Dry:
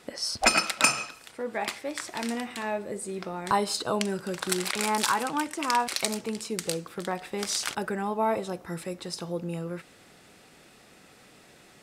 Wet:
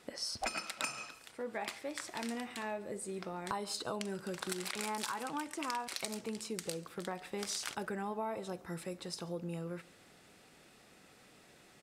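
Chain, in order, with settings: compression 6:1, threshold -28 dBFS, peak gain reduction 12.5 dB; on a send: delay 139 ms -24 dB; on the sum: trim -6.5 dB

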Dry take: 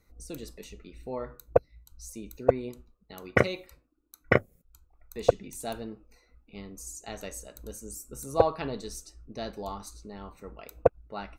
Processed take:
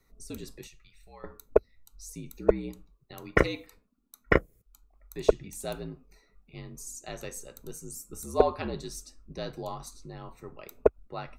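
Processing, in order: frequency shift -60 Hz; 0.67–1.24 s: amplifier tone stack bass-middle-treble 10-0-10

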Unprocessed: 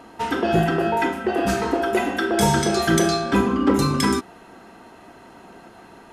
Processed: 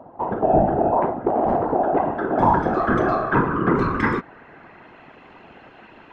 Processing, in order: low-pass sweep 720 Hz -> 2.6 kHz, 1.33–5.20 s; whisper effect; 0.97–1.65 s: loudspeaker Doppler distortion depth 0.31 ms; trim -2 dB

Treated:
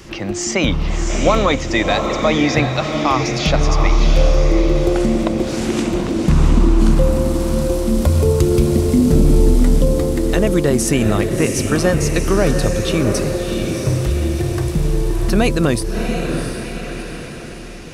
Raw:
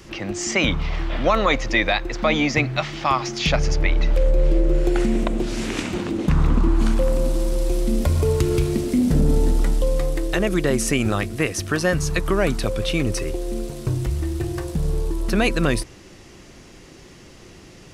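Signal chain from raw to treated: on a send: echo that smears into a reverb 702 ms, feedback 44%, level -5 dB; on the sum: dynamic bell 2.1 kHz, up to -6 dB, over -36 dBFS, Q 0.74; trim +5 dB

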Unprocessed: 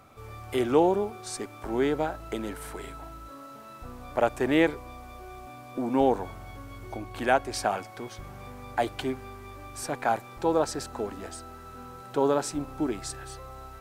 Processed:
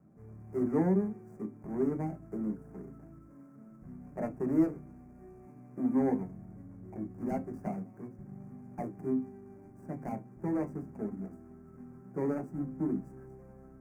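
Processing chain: median filter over 41 samples; Butterworth band-stop 3.5 kHz, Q 0.72; hum notches 50/100/150 Hz; feedback comb 130 Hz, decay 0.21 s, harmonics all, mix 60%; on a send: reverberation RT60 0.15 s, pre-delay 3 ms, DRR 5 dB; on the sum: trim -5.5 dB

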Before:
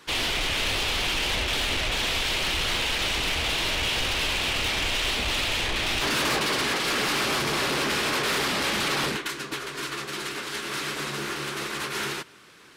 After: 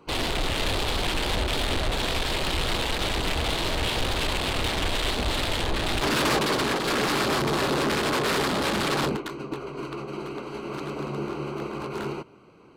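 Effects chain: local Wiener filter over 25 samples; trim +5 dB

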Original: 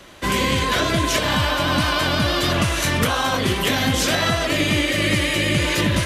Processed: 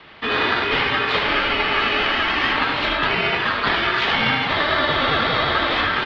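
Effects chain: high-pass 100 Hz; treble shelf 2 kHz +11.5 dB; on a send: delay 75 ms -6.5 dB; on the sum: ring modulator 1.6 kHz; mistuned SSB -140 Hz 190–3600 Hz

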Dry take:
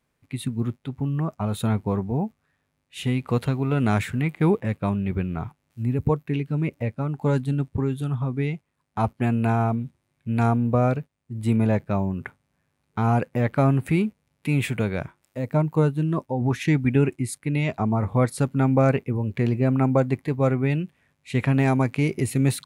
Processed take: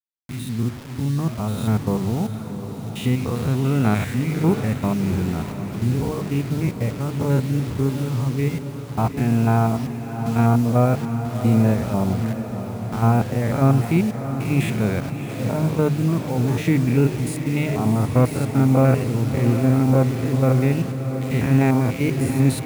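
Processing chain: spectrogram pixelated in time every 100 ms; bass shelf 200 Hz +2.5 dB; bit crusher 7-bit; hum notches 50/100/150 Hz; echo that smears into a reverb 698 ms, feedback 67%, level -9.5 dB; trim +3 dB

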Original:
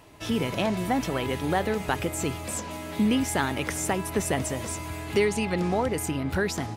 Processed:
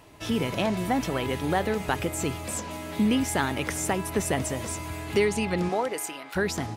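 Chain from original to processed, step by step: 5.68–6.35 s: high-pass 260 Hz -> 980 Hz 12 dB/octave

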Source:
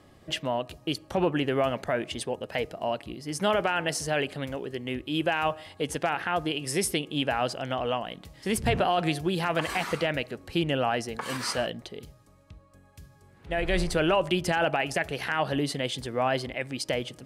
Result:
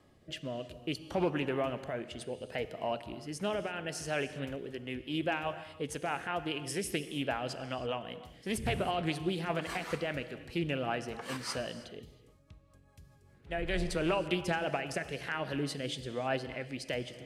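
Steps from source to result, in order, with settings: rotary cabinet horn 0.6 Hz, later 5 Hz, at 3.79 s; gated-style reverb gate 350 ms flat, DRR 11.5 dB; loudspeaker Doppler distortion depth 0.13 ms; trim -5 dB

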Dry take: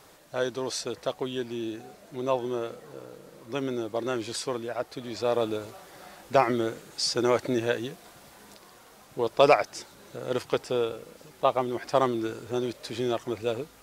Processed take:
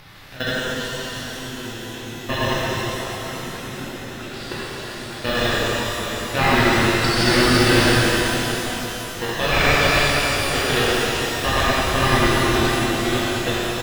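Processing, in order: chunks repeated in reverse 113 ms, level -1.5 dB; delay 407 ms -7.5 dB; in parallel at -4.5 dB: sample-and-hold 38×; on the sum: level held to a coarse grid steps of 23 dB; ten-band graphic EQ 500 Hz -9 dB, 2 kHz +7 dB, 4 kHz +7 dB, 8 kHz -12 dB; upward compressor, threshold -37 dBFS; bass shelf 64 Hz +10.5 dB; pitch-shifted reverb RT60 3.8 s, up +12 st, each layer -8 dB, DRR -10 dB

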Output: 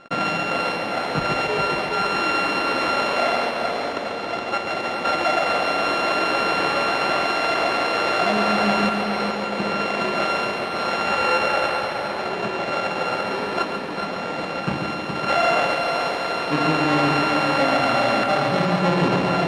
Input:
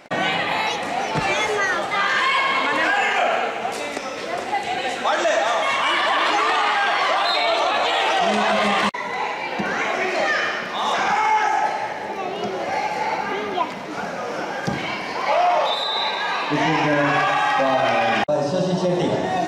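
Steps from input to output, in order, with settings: sorted samples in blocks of 32 samples; low-pass 3.2 kHz 12 dB/octave; on a send: multi-head delay 139 ms, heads first and third, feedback 63%, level -7 dB

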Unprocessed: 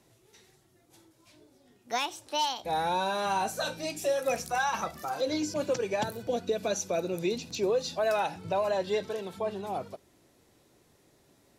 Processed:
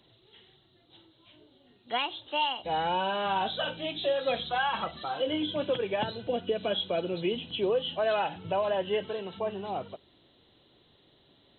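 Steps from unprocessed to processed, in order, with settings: knee-point frequency compression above 2.7 kHz 4:1

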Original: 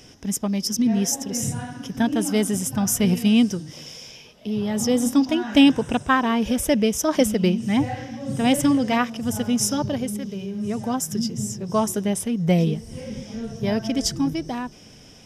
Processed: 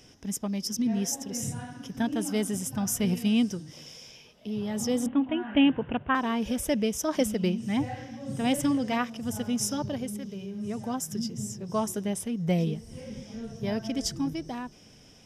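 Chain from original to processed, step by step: 5.06–6.15 s: steep low-pass 3.2 kHz 72 dB/octave; trim -7 dB

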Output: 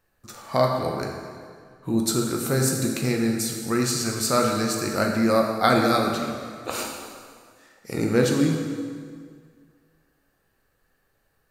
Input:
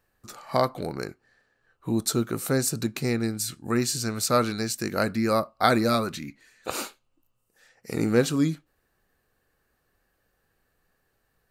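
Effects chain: plate-style reverb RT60 2 s, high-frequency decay 0.8×, DRR 0.5 dB

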